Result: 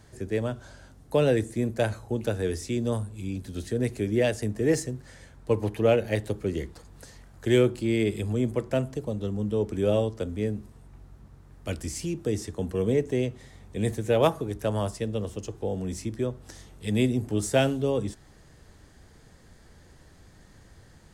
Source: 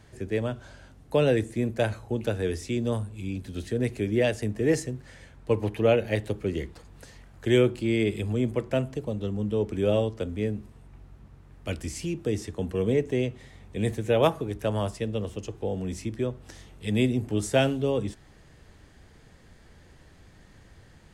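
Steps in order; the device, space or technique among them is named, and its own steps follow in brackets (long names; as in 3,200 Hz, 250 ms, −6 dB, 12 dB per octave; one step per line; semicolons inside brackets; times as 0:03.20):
exciter from parts (in parallel at −4 dB: high-pass filter 2,200 Hz 12 dB per octave + soft clipping −34.5 dBFS, distortion −8 dB + high-pass filter 2,400 Hz 12 dB per octave)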